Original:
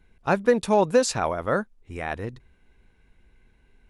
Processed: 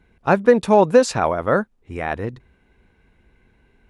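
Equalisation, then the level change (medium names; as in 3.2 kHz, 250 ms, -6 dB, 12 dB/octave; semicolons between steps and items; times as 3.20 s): high-pass 71 Hz 6 dB/octave; treble shelf 3.3 kHz -8.5 dB; +6.5 dB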